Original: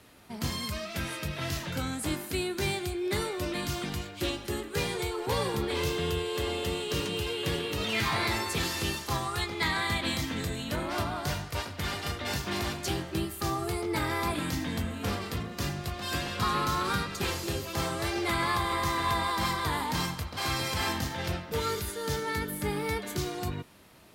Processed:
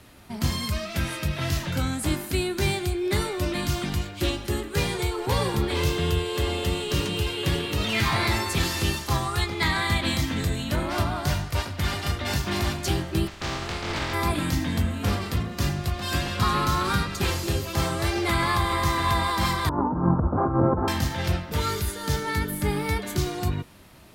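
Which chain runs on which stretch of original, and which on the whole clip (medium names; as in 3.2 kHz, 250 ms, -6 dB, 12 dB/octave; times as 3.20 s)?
13.26–14.13 s: spectral contrast reduction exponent 0.3 + distance through air 160 m
19.69–20.88 s: Chebyshev low-pass 1.4 kHz, order 5 + compressor with a negative ratio -35 dBFS, ratio -0.5 + peaking EQ 330 Hz +13.5 dB 2.5 oct
whole clip: bass shelf 110 Hz +9 dB; band-stop 460 Hz, Q 14; trim +4 dB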